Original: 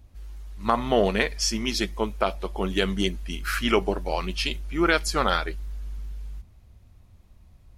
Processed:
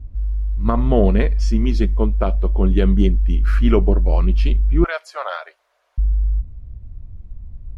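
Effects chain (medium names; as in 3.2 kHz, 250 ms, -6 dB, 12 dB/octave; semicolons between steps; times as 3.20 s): 4.84–5.98 s: elliptic high-pass 600 Hz, stop band 70 dB; tilt EQ -4.5 dB/octave; band-stop 810 Hz, Q 12; trim -1 dB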